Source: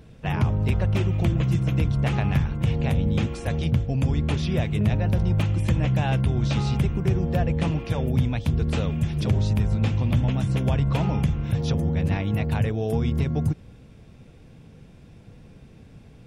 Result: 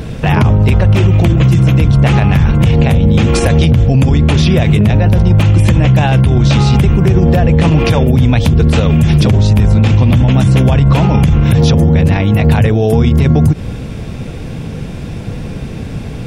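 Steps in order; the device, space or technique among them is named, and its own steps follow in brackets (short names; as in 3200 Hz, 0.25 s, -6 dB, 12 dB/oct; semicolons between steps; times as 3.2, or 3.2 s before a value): loud club master (compressor 3:1, threshold -24 dBFS, peak gain reduction 7 dB; hard clip -17 dBFS, distortion -39 dB; maximiser +26 dB); gain -1 dB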